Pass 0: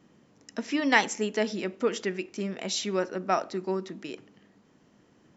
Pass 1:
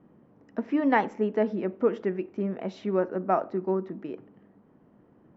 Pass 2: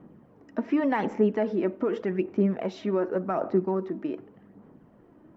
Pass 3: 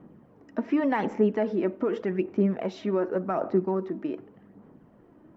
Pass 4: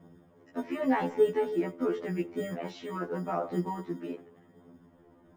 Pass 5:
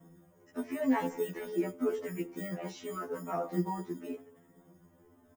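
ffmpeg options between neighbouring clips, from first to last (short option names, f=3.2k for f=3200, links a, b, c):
-af "lowpass=1.1k,volume=3dB"
-af "alimiter=limit=-19dB:level=0:latency=1:release=66,aphaser=in_gain=1:out_gain=1:delay=3.3:decay=0.39:speed=0.86:type=sinusoidal,volume=3dB"
-af anull
-filter_complex "[0:a]acrossover=split=160|1800[a][b][c];[a]acrusher=samples=26:mix=1:aa=0.000001[d];[d][b][c]amix=inputs=3:normalize=0,afftfilt=real='re*2*eq(mod(b,4),0)':imag='im*2*eq(mod(b,4),0)':win_size=2048:overlap=0.75"
-filter_complex "[0:a]acrossover=split=580|1000[a][b][c];[c]aexciter=amount=4.4:drive=2.9:freq=5.7k[d];[a][b][d]amix=inputs=3:normalize=0,asplit=2[e][f];[f]adelay=3.9,afreqshift=0.89[g];[e][g]amix=inputs=2:normalize=1"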